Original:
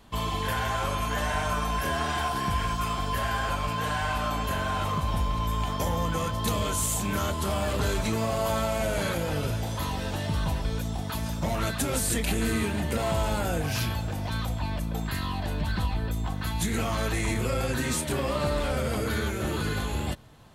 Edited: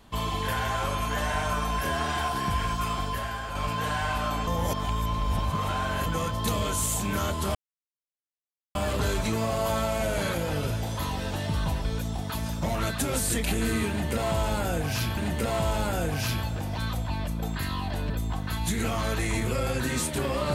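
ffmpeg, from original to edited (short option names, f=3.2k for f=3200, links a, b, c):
-filter_complex "[0:a]asplit=7[a][b][c][d][e][f][g];[a]atrim=end=3.55,asetpts=PTS-STARTPTS,afade=t=out:st=3.01:d=0.54:c=qua:silence=0.473151[h];[b]atrim=start=3.55:end=4.472,asetpts=PTS-STARTPTS,afade=t=in:d=0.004:c=hsin:silence=0.473151[i];[c]atrim=start=4.468:end=6.062,asetpts=PTS-STARTPTS,areverse[j];[d]atrim=start=6.058:end=7.55,asetpts=PTS-STARTPTS,afade=t=out:st=1.488:d=0.004:c=hsin,apad=pad_dur=1.2[k];[e]atrim=start=7.55:end=13.972,asetpts=PTS-STARTPTS,afade=t=in:d=0.004:c=hsin[l];[f]atrim=start=12.688:end=15.622[m];[g]atrim=start=16.038[n];[h][i]concat=n=2:v=0:a=1[o];[o][j]acrossfade=d=0.004:c1=hsin:c2=hsin[p];[k][l]concat=n=2:v=0:a=1[q];[p][q]acrossfade=d=0.004:c1=hsin:c2=hsin[r];[r][m]acrossfade=d=0.004:c1=hsin:c2=hsin[s];[s][n]acrossfade=d=0.004:c1=hsin:c2=hsin"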